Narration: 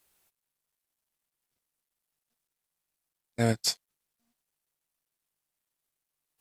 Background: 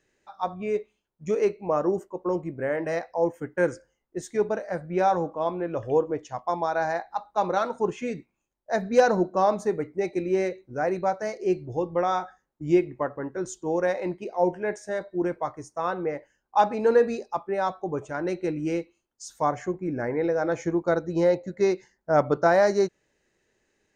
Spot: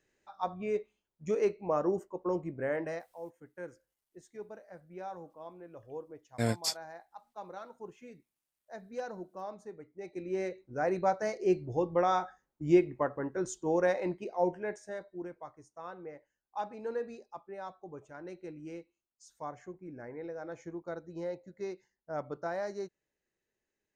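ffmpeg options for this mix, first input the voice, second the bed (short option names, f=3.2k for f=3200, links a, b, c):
-filter_complex "[0:a]adelay=3000,volume=-4.5dB[a];[1:a]volume=11.5dB,afade=t=out:st=2.78:d=0.3:silence=0.188365,afade=t=in:st=9.93:d=1.17:silence=0.141254,afade=t=out:st=13.86:d=1.44:silence=0.211349[b];[a][b]amix=inputs=2:normalize=0"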